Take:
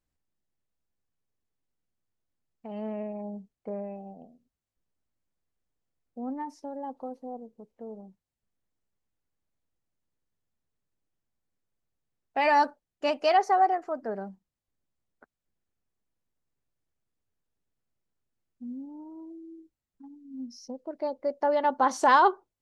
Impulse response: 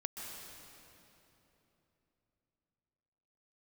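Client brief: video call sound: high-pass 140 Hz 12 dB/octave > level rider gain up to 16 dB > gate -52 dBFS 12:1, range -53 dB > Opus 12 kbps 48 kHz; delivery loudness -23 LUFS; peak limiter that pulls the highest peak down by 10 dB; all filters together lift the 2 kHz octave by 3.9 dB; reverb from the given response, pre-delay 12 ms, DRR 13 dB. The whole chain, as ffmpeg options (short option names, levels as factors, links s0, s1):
-filter_complex "[0:a]equalizer=f=2000:t=o:g=5,alimiter=limit=0.133:level=0:latency=1,asplit=2[s0][s1];[1:a]atrim=start_sample=2205,adelay=12[s2];[s1][s2]afir=irnorm=-1:irlink=0,volume=0.224[s3];[s0][s3]amix=inputs=2:normalize=0,highpass=140,dynaudnorm=m=6.31,agate=range=0.00224:threshold=0.00251:ratio=12,volume=0.708" -ar 48000 -c:a libopus -b:a 12k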